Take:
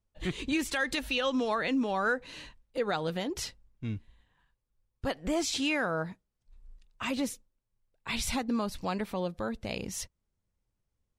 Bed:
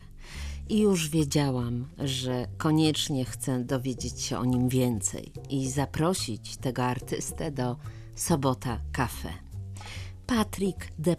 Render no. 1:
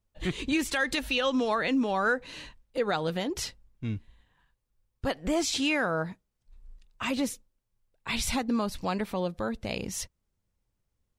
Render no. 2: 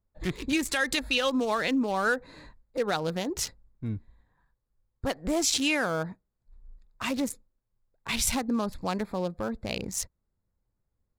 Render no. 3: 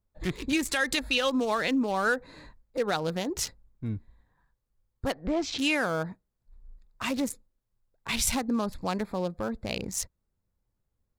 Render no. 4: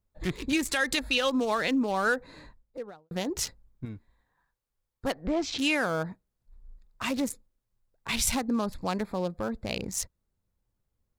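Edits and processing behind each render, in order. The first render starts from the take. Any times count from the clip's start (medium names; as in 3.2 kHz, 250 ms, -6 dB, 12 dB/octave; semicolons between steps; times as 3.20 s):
trim +2.5 dB
local Wiener filter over 15 samples; treble shelf 5 kHz +12 dB
5.12–5.59 s: distance through air 210 m
2.35–3.11 s: studio fade out; 3.85–5.05 s: bass shelf 320 Hz -10.5 dB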